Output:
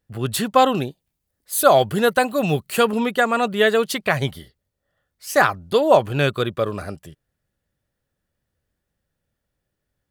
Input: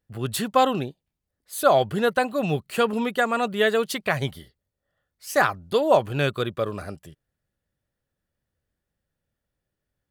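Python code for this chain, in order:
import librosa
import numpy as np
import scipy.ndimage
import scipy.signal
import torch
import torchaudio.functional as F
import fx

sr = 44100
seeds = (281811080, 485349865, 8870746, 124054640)

y = fx.high_shelf(x, sr, hz=6900.0, db=8.5, at=(0.74, 2.91))
y = y * librosa.db_to_amplitude(4.0)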